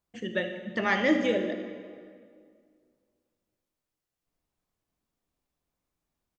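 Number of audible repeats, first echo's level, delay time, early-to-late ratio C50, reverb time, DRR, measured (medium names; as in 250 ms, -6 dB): 1, -14.0 dB, 77 ms, 7.0 dB, 2.1 s, 5.5 dB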